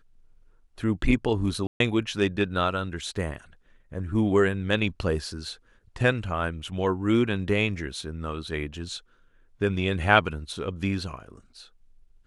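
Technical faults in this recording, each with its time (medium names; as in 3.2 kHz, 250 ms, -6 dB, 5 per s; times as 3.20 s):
1.67–1.80 s: dropout 132 ms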